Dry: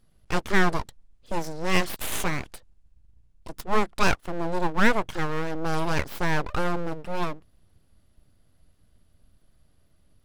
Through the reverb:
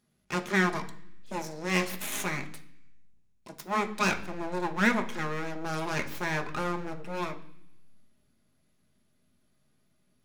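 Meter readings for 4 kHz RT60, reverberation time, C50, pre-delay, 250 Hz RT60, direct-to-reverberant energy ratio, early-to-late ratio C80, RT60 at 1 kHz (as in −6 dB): 0.95 s, 0.65 s, 13.5 dB, 3 ms, 0.95 s, 4.0 dB, 16.5 dB, 0.65 s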